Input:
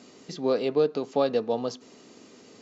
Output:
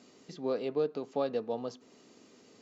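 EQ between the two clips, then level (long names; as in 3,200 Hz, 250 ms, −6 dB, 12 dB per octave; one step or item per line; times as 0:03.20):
dynamic equaliser 5,300 Hz, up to −4 dB, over −52 dBFS, Q 0.74
−7.5 dB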